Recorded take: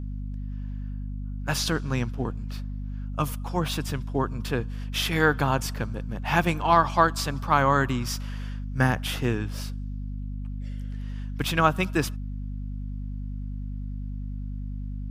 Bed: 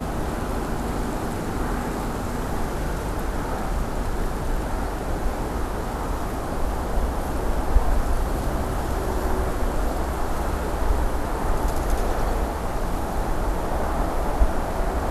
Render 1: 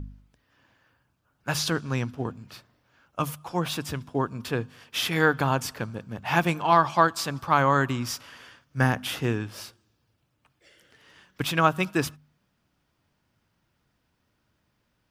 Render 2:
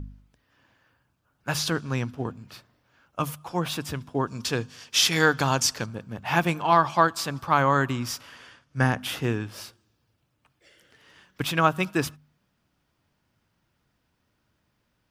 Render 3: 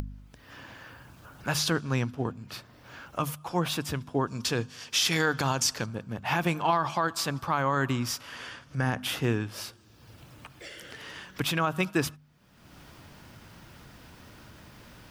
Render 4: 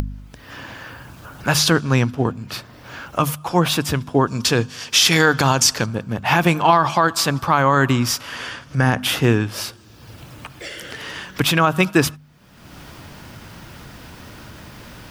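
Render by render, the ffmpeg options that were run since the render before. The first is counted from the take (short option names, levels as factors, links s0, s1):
-af "bandreject=f=50:t=h:w=4,bandreject=f=100:t=h:w=4,bandreject=f=150:t=h:w=4,bandreject=f=200:t=h:w=4,bandreject=f=250:t=h:w=4"
-filter_complex "[0:a]asettb=1/sr,asplit=3[s0][s1][s2];[s0]atrim=end=4.274[s3];[s1]atrim=start=4.27:end=5.86,asetpts=PTS-STARTPTS,afade=t=in:d=0.004:c=qsin,afade=t=out:st=1.586:d=0.004:c=qsin,equalizer=f=5900:w=0.87:g=13.5[s4];[s2]atrim=start=5.856[s5];[s3][s4]acrossfade=d=0.004:c1=hsin:c2=qsin[s6];[s6][s5]acrossfade=d=0.004:c1=qsin:c2=hsin,asettb=1/sr,asplit=3[s7][s8][s9];[s7]atrim=end=8.364[s10];[s8]atrim=start=8.36:end=9,asetpts=PTS-STARTPTS,afade=t=in:d=0.004:c=qsin,afade=t=out:st=0.636:d=0.004:c=qsin,lowpass=f=11000:w=0.5412,lowpass=f=11000:w=1.3066[s11];[s9]atrim=start=8.996[s12];[s10][s11]acrossfade=d=0.004:c1=hsin:c2=qsin[s13];[s13][s12]acrossfade=d=0.004:c1=qsin:c2=hsin"
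-af "acompressor=mode=upward:threshold=0.0282:ratio=2.5,alimiter=limit=0.178:level=0:latency=1:release=57"
-af "volume=3.55"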